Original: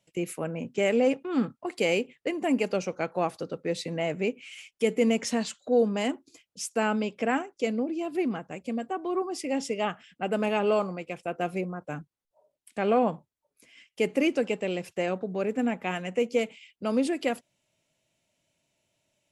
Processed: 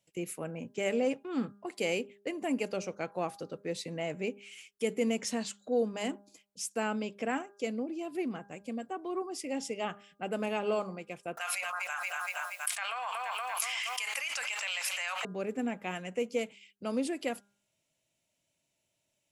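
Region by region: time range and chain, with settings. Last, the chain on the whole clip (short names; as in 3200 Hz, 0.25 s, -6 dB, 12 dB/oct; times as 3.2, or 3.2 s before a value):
11.37–15.25 inverse Chebyshev high-pass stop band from 390 Hz, stop band 50 dB + feedback echo 0.236 s, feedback 53%, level -19 dB + fast leveller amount 100%
whole clip: high shelf 6200 Hz +7 dB; de-hum 201.9 Hz, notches 8; gain -6.5 dB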